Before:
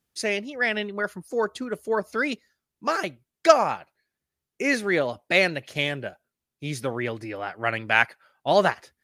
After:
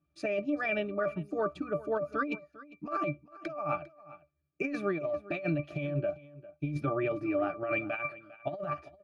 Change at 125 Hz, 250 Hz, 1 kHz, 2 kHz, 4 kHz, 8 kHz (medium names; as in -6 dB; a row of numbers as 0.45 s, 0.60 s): -1.0 dB, -3.5 dB, -10.0 dB, -12.5 dB, -21.0 dB, under -25 dB